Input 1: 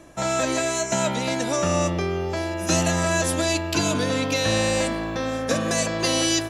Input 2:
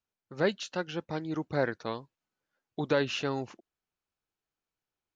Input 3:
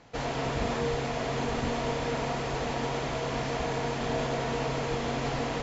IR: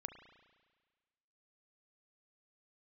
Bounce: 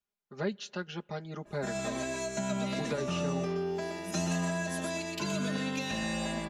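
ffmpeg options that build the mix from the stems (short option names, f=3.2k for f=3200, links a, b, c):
-filter_complex "[0:a]adynamicequalizer=threshold=0.0112:dfrequency=4600:dqfactor=0.7:tfrequency=4600:tqfactor=0.7:attack=5:release=100:ratio=0.375:range=2:mode=cutabove:tftype=highshelf,adelay=1450,volume=-11dB,asplit=2[a][b];[b]volume=-5.5dB[c];[1:a]volume=-5.5dB,asplit=2[d][e];[e]volume=-18.5dB[f];[3:a]atrim=start_sample=2205[g];[f][g]afir=irnorm=-1:irlink=0[h];[c]aecho=0:1:122:1[i];[a][d][h][i]amix=inputs=4:normalize=0,aecho=1:1:4.9:0.91,acrossover=split=290[j][k];[k]acompressor=threshold=-33dB:ratio=6[l];[j][l]amix=inputs=2:normalize=0"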